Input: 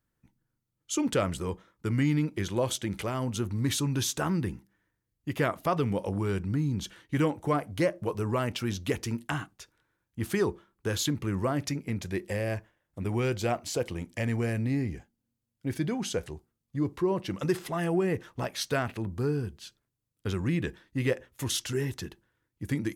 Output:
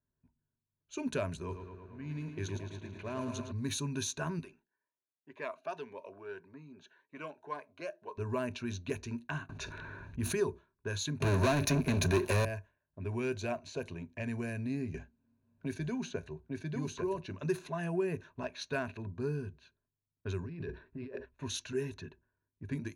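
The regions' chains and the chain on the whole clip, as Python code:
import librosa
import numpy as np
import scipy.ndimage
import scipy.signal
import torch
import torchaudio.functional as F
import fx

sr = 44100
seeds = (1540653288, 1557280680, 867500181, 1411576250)

y = fx.chain(x, sr, fx.auto_swell(attack_ms=618.0),
    fx.echo_crushed(ms=110, feedback_pct=80, bits=9, wet_db=-7), at=(1.39, 3.52))
y = fx.chain(y, sr, fx.highpass(hz=540.0, slope=12),
    fx.notch_cascade(direction='rising', hz=1.8), at=(4.39, 8.18))
y = fx.chain(y, sr, fx.low_shelf(hz=120.0, db=5.0),
    fx.env_flatten(amount_pct=70), at=(9.49, 10.4))
y = fx.chain(y, sr, fx.peak_eq(hz=7600.0, db=-6.5, octaves=0.31),
    fx.leveller(passes=5),
    fx.band_squash(depth_pct=40), at=(11.2, 12.45))
y = fx.chain(y, sr, fx.echo_single(ms=848, db=-4.0),
    fx.band_squash(depth_pct=70), at=(14.94, 17.2))
y = fx.chain(y, sr, fx.peak_eq(hz=410.0, db=8.5, octaves=0.33),
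    fx.over_compress(threshold_db=-35.0, ratio=-1.0),
    fx.resample_linear(factor=6), at=(20.43, 21.26))
y = fx.env_lowpass(y, sr, base_hz=1200.0, full_db=-23.5)
y = fx.ripple_eq(y, sr, per_octave=1.5, db=12)
y = F.gain(torch.from_numpy(y), -8.5).numpy()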